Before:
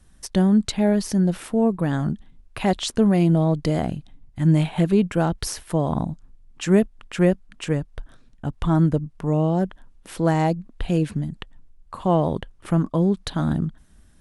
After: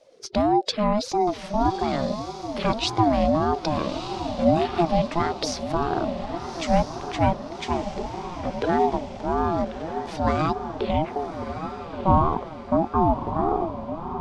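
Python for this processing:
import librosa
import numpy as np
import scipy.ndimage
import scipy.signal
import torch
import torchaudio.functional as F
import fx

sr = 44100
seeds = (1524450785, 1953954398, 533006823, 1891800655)

y = fx.spec_quant(x, sr, step_db=15)
y = fx.filter_sweep_lowpass(y, sr, from_hz=4800.0, to_hz=560.0, start_s=10.8, end_s=11.42, q=2.4)
y = fx.echo_diffused(y, sr, ms=1252, feedback_pct=50, wet_db=-8.5)
y = fx.ring_lfo(y, sr, carrier_hz=480.0, swing_pct=20, hz=1.7)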